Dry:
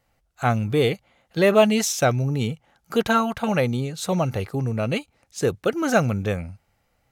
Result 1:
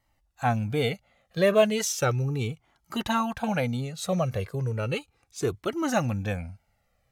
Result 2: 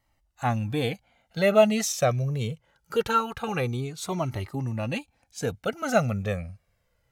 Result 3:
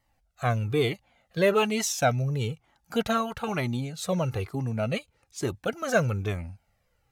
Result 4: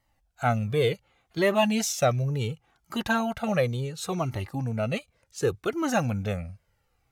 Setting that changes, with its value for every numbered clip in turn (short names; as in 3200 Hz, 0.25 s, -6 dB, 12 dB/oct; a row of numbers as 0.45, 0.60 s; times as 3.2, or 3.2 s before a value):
cascading flanger, rate: 0.35, 0.23, 1.1, 0.69 Hz